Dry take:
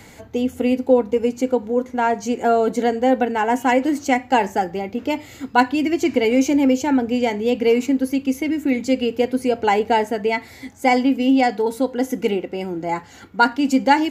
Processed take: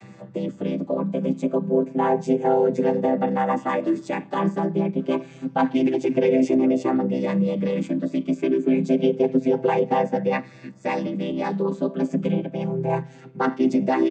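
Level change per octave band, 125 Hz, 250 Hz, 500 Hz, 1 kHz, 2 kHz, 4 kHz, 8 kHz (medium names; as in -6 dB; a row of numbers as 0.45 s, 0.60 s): +9.5 dB, -2.5 dB, -2.5 dB, -6.5 dB, -9.5 dB, -11.5 dB, under -10 dB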